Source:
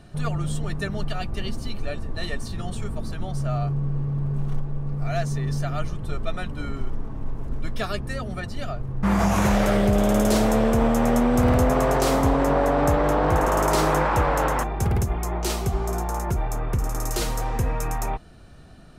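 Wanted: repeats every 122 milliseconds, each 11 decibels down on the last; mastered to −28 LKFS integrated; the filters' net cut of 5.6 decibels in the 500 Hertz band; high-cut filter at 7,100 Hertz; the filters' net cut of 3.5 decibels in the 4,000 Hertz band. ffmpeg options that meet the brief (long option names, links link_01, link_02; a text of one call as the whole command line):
ffmpeg -i in.wav -af "lowpass=7100,equalizer=frequency=500:width_type=o:gain=-7,equalizer=frequency=4000:width_type=o:gain=-4,aecho=1:1:122|244|366:0.282|0.0789|0.0221,volume=-2.5dB" out.wav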